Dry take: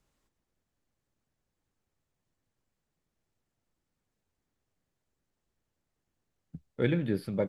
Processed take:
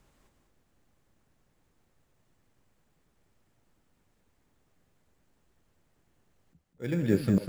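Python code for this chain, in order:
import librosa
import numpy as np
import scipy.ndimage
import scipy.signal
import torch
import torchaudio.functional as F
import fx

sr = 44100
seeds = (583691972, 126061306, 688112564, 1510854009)

p1 = fx.auto_swell(x, sr, attack_ms=685.0)
p2 = fx.sample_hold(p1, sr, seeds[0], rate_hz=7200.0, jitter_pct=0)
p3 = p1 + F.gain(torch.from_numpy(p2), -6.0).numpy()
p4 = p3 + 10.0 ** (-6.0 / 20.0) * np.pad(p3, (int(198 * sr / 1000.0), 0))[:len(p3)]
y = F.gain(torch.from_numpy(p4), 8.0).numpy()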